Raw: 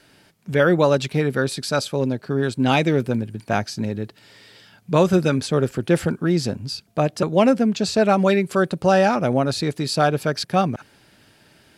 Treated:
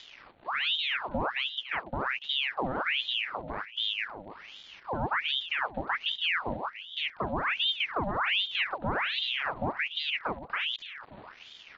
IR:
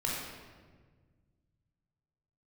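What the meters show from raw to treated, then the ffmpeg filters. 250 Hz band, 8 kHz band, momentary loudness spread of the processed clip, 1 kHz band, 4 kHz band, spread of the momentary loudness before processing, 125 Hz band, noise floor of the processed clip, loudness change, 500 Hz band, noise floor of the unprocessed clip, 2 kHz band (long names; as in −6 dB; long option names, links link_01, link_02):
−20.5 dB, below −30 dB, 15 LU, −9.0 dB, +2.0 dB, 9 LU, −20.5 dB, −53 dBFS, −9.5 dB, −19.5 dB, −56 dBFS, −2.0 dB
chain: -filter_complex "[0:a]lowpass=frequency=1000:width=0.5412,lowpass=frequency=1000:width=1.3066,adynamicequalizer=threshold=0.0141:dfrequency=250:dqfactor=5.6:tfrequency=250:tqfactor=5.6:attack=5:release=100:ratio=0.375:range=3:mode=cutabove:tftype=bell,acompressor=threshold=-26dB:ratio=2,alimiter=limit=-19.5dB:level=0:latency=1:release=14,acompressor=mode=upward:threshold=-36dB:ratio=2.5,asplit=2[link_01][link_02];[link_02]adelay=120,highpass=300,lowpass=3400,asoftclip=type=hard:threshold=-28dB,volume=-27dB[link_03];[link_01][link_03]amix=inputs=2:normalize=0,aresample=8000,aeval=exprs='val(0)*gte(abs(val(0)),0.00447)':channel_layout=same,aresample=44100,asuperstop=centerf=690:order=4:qfactor=3.1,asplit=2[link_04][link_05];[link_05]aecho=0:1:288|576|864|1152|1440:0.251|0.113|0.0509|0.0229|0.0103[link_06];[link_04][link_06]amix=inputs=2:normalize=0,aeval=exprs='val(0)*sin(2*PI*1900*n/s+1900*0.8/1.3*sin(2*PI*1.3*n/s))':channel_layout=same"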